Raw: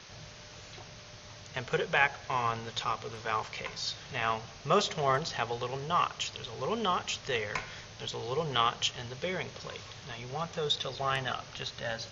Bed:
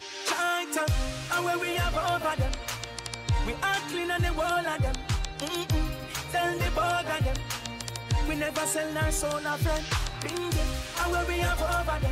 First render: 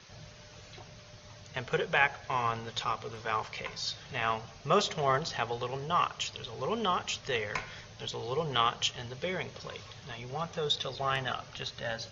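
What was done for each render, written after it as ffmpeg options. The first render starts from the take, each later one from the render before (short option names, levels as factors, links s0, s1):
-af "afftdn=nr=6:nf=-50"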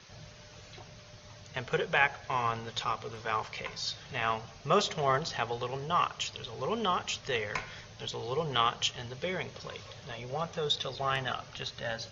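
-filter_complex "[0:a]asettb=1/sr,asplit=3[s0][s1][s2];[s0]atrim=end=9.854[s3];[s1]atrim=start=9.85:end=10.51,asetpts=PTS-STARTPTS,afade=t=in:d=0.004:c=qsin,afade=t=out:st=0.656:d=0.004:c=qsin,equalizer=f=550:t=o:w=0.28:g=10.5[s4];[s2]atrim=start=10.506[s5];[s3][s4]acrossfade=d=0.004:c1=hsin:c2=qsin[s6];[s6][s5]acrossfade=d=0.004:c1=qsin:c2=hsin"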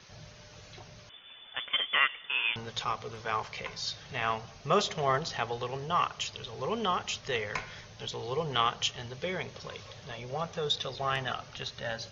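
-filter_complex "[0:a]asettb=1/sr,asplit=3[s0][s1][s2];[s0]atrim=end=1.094[s3];[s1]atrim=start=1.09:end=2.56,asetpts=PTS-STARTPTS,afade=t=in:d=0.004:c=qsin,afade=t=out:st=1.466:d=0.004:c=qsin,lowpass=f=3100:t=q:w=0.5098,lowpass=f=3100:t=q:w=0.6013,lowpass=f=3100:t=q:w=0.9,lowpass=f=3100:t=q:w=2.563,afreqshift=-3600[s4];[s2]atrim=start=2.556[s5];[s3][s4]acrossfade=d=0.004:c1=hsin:c2=qsin[s6];[s6][s5]acrossfade=d=0.004:c1=qsin:c2=hsin"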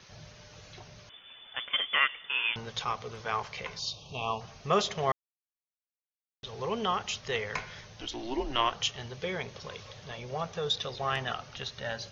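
-filter_complex "[0:a]asettb=1/sr,asplit=3[s0][s1][s2];[s0]atrim=end=3.794[s3];[s1]atrim=start=3.79:end=4.41,asetpts=PTS-STARTPTS,afade=t=in:d=0.004:c=qsin,afade=t=out:st=0.616:d=0.004:c=qsin,asuperstop=centerf=1700:order=12:qfactor=1.3[s4];[s2]atrim=start=4.406[s5];[s3][s4]acrossfade=d=0.004:c1=hsin:c2=qsin[s6];[s6][s5]acrossfade=d=0.004:c1=qsin:c2=hsin,asettb=1/sr,asplit=3[s7][s8][s9];[s7]atrim=end=8.014[s10];[s8]atrim=start=8.01:end=8.73,asetpts=PTS-STARTPTS,afade=t=in:d=0.004:c=qsin,afade=t=out:st=0.716:d=0.004:c=qsin,afreqshift=-120[s11];[s9]atrim=start=8.726[s12];[s10][s11]acrossfade=d=0.004:c1=hsin:c2=qsin[s13];[s13][s12]acrossfade=d=0.004:c1=qsin:c2=hsin,asplit=3[s14][s15][s16];[s14]atrim=end=5.12,asetpts=PTS-STARTPTS,afade=t=out:st=5.116:d=0.004:c=hsin[s17];[s15]atrim=start=5.12:end=6.43,asetpts=PTS-STARTPTS,volume=0[s18];[s16]atrim=start=6.43,asetpts=PTS-STARTPTS,afade=t=in:d=0.004:c=hsin[s19];[s17][s18][s19]concat=n=3:v=0:a=1"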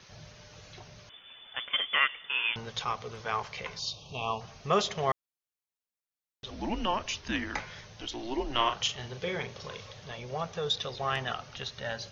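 -filter_complex "[0:a]asettb=1/sr,asplit=3[s0][s1][s2];[s0]atrim=end=6.504[s3];[s1]atrim=start=6.5:end=7.6,asetpts=PTS-STARTPTS,afade=t=in:d=0.004:c=qsin,afade=t=out:st=1.096:d=0.004:c=qsin,afreqshift=-190[s4];[s2]atrim=start=7.596[s5];[s3][s4]acrossfade=d=0.004:c1=hsin:c2=qsin[s6];[s6][s5]acrossfade=d=0.004:c1=qsin:c2=hsin,asettb=1/sr,asplit=3[s7][s8][s9];[s7]atrim=end=8.504[s10];[s8]atrim=start=8.5:end=9.86,asetpts=PTS-STARTPTS,afade=t=in:d=0.004:c=qsin,afade=t=out:st=1.356:d=0.004:c=qsin,asplit=2[s11][s12];[s12]adelay=40,volume=0.422[s13];[s11][s13]amix=inputs=2:normalize=0,atrim=end_sample=59976[s14];[s9]atrim=start=9.856[s15];[s10][s14]acrossfade=d=0.004:c1=hsin:c2=qsin[s16];[s16][s15]acrossfade=d=0.004:c1=qsin:c2=hsin"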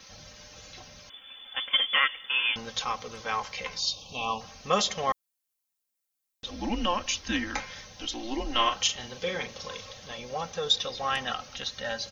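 -af "highshelf=f=5500:g=11,aecho=1:1:3.8:0.64"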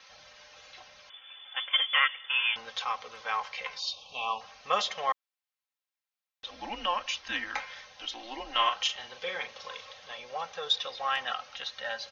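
-filter_complex "[0:a]acrossover=split=550 4300:gain=0.126 1 0.178[s0][s1][s2];[s0][s1][s2]amix=inputs=3:normalize=0"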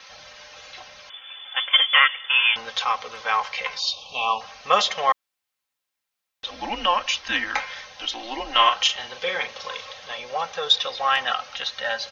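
-af "volume=2.82,alimiter=limit=0.794:level=0:latency=1"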